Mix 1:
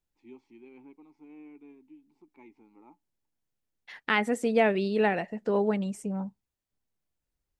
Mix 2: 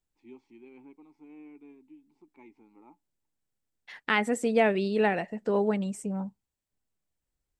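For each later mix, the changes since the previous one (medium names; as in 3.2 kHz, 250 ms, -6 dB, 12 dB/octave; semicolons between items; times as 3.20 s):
second voice: add peaking EQ 7.9 kHz +6 dB 0.21 oct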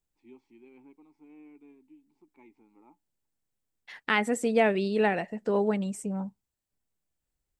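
first voice -3.0 dB; second voice: add treble shelf 10 kHz +4.5 dB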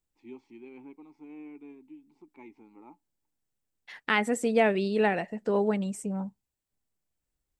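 first voice +7.0 dB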